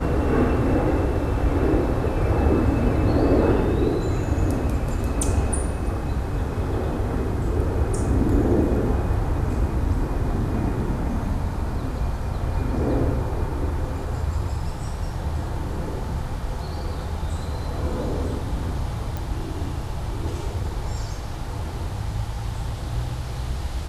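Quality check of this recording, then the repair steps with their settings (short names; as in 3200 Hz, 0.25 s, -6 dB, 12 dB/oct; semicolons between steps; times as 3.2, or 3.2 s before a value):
19.17 pop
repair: de-click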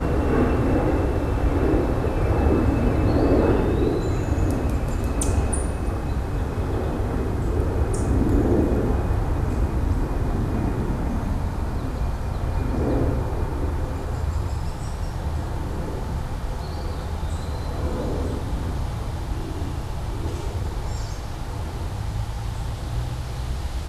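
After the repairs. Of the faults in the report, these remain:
19.17 pop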